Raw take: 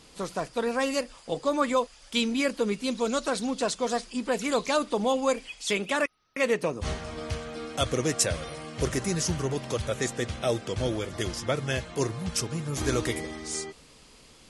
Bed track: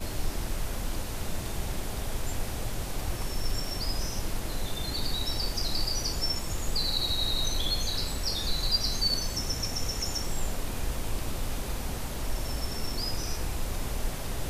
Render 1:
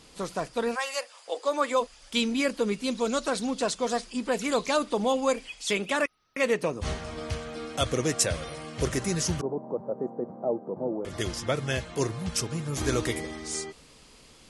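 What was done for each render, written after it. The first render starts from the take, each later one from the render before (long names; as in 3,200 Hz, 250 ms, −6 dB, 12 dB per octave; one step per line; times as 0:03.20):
0:00.74–0:01.80: high-pass filter 760 Hz → 280 Hz 24 dB per octave
0:09.41–0:11.05: elliptic band-pass filter 170–900 Hz, stop band 50 dB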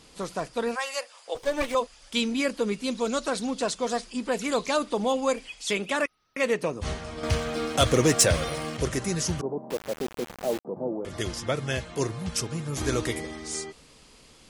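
0:01.35–0:01.75: lower of the sound and its delayed copy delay 0.34 ms
0:07.23–0:08.77: leveller curve on the samples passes 2
0:09.70–0:10.65: bit-depth reduction 6 bits, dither none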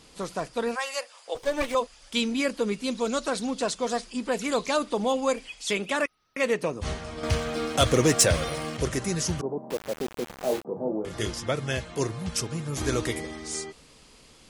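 0:10.34–0:11.30: double-tracking delay 28 ms −5 dB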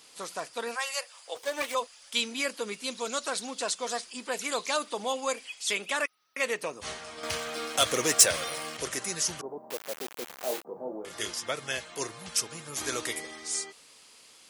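high-pass filter 1,000 Hz 6 dB per octave
high-shelf EQ 11,000 Hz +9 dB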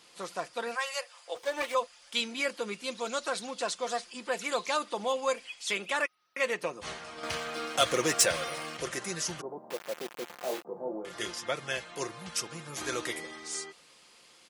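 high-shelf EQ 5,400 Hz −9.5 dB
comb filter 5.7 ms, depth 35%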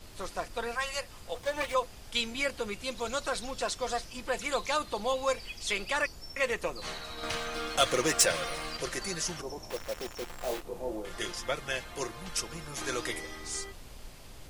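mix in bed track −16.5 dB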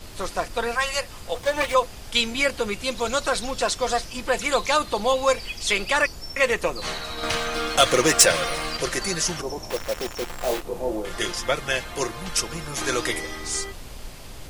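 level +9 dB
brickwall limiter −3 dBFS, peak gain reduction 1.5 dB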